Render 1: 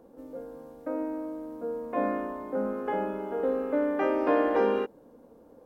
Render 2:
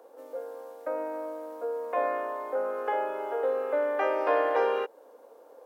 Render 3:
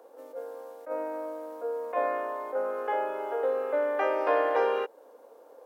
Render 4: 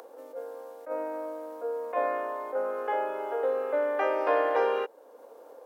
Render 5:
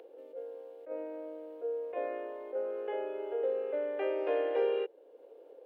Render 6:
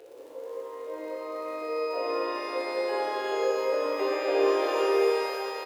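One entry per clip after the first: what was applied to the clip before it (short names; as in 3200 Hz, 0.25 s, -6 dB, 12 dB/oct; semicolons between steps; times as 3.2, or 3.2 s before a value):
HPF 470 Hz 24 dB/oct; in parallel at 0 dB: compressor, threshold -37 dBFS, peak gain reduction 13.5 dB
attack slew limiter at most 240 dB/s
upward compressor, threshold -43 dBFS
EQ curve 150 Hz 0 dB, 230 Hz -14 dB, 370 Hz +2 dB, 1100 Hz -19 dB, 2900 Hz -3 dB, 5800 Hz -20 dB
doubler 18 ms -7 dB; crackle 42/s -44 dBFS; shimmer reverb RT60 3.4 s, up +12 st, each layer -8 dB, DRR -7 dB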